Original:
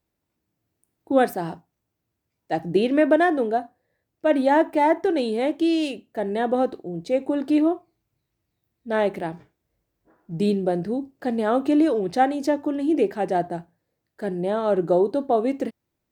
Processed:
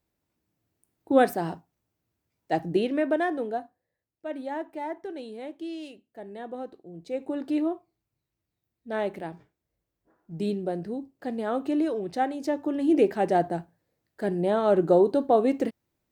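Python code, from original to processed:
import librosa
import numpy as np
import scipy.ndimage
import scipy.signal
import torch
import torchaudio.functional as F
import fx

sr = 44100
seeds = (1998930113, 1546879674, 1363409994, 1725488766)

y = fx.gain(x, sr, db=fx.line((2.56, -1.0), (2.99, -7.5), (3.6, -7.5), (4.28, -15.0), (6.69, -15.0), (7.33, -7.0), (12.4, -7.0), (12.93, 0.0)))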